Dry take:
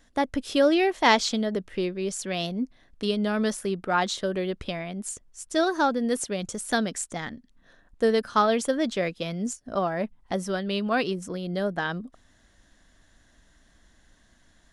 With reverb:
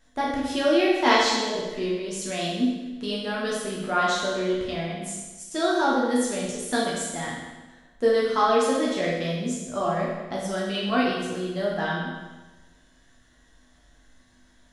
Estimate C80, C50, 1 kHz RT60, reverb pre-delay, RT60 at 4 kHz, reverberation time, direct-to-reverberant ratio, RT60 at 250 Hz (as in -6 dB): 3.0 dB, 0.0 dB, 1.2 s, 8 ms, 1.1 s, 1.2 s, -6.0 dB, 1.2 s